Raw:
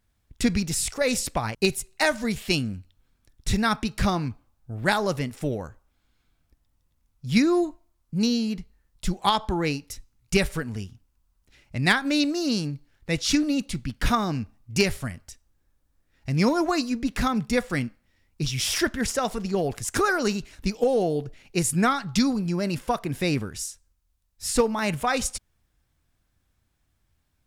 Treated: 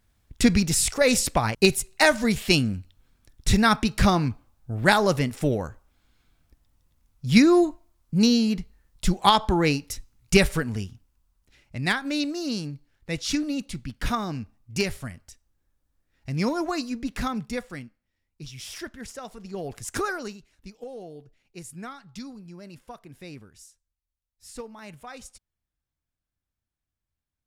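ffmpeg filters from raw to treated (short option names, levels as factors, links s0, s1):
-af "volume=4.47,afade=t=out:st=10.46:d=1.34:silence=0.398107,afade=t=out:st=17.28:d=0.56:silence=0.354813,afade=t=in:st=19.37:d=0.6:silence=0.354813,afade=t=out:st=19.97:d=0.41:silence=0.223872"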